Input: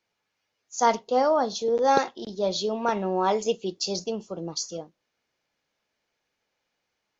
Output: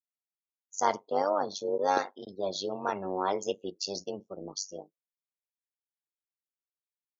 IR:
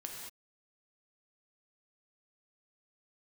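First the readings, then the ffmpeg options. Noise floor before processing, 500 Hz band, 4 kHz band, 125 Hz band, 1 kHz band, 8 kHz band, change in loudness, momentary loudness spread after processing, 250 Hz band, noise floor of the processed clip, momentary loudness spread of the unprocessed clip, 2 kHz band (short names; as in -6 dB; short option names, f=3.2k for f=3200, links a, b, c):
-80 dBFS, -6.5 dB, -6.5 dB, -9.5 dB, -6.0 dB, n/a, -6.5 dB, 12 LU, -8.0 dB, under -85 dBFS, 11 LU, -5.5 dB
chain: -af "tremolo=f=97:d=0.889,afftdn=nr=34:nf=-45,highpass=f=270:p=1,volume=-1.5dB"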